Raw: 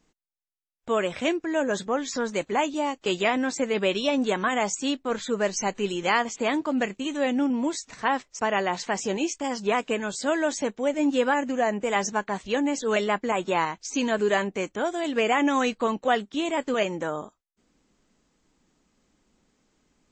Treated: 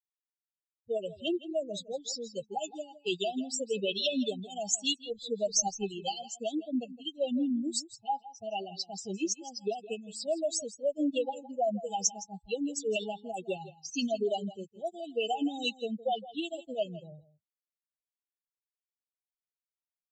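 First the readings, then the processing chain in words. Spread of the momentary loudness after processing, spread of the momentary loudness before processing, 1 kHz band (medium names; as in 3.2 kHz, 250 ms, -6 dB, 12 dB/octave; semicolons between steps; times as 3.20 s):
8 LU, 5 LU, -10.5 dB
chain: expander on every frequency bin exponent 3; peak limiter -25 dBFS, peak gain reduction 9.5 dB; level-controlled noise filter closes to 2.3 kHz, open at -31.5 dBFS; delay 164 ms -16.5 dB; FFT band-reject 830–2600 Hz; tilt EQ +2 dB/octave; trim +5 dB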